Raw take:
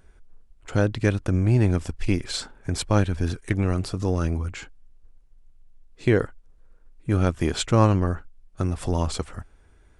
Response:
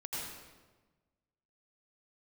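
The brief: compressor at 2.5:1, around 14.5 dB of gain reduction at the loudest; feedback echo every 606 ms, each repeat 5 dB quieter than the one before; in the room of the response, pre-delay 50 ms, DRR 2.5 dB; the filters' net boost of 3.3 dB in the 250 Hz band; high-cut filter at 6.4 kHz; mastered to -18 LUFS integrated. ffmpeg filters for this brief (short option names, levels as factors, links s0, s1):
-filter_complex "[0:a]lowpass=6400,equalizer=f=250:t=o:g=4.5,acompressor=threshold=0.0178:ratio=2.5,aecho=1:1:606|1212|1818|2424|3030|3636|4242:0.562|0.315|0.176|0.0988|0.0553|0.031|0.0173,asplit=2[s0][s1];[1:a]atrim=start_sample=2205,adelay=50[s2];[s1][s2]afir=irnorm=-1:irlink=0,volume=0.596[s3];[s0][s3]amix=inputs=2:normalize=0,volume=5.62"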